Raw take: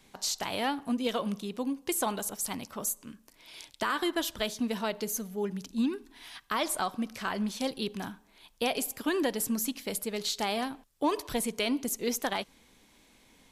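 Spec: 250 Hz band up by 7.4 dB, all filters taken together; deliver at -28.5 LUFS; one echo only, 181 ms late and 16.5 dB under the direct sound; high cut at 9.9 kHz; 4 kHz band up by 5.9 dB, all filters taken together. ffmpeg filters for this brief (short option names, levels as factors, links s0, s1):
-af "lowpass=9900,equalizer=f=250:t=o:g=8.5,equalizer=f=4000:t=o:g=7.5,aecho=1:1:181:0.15,volume=0.891"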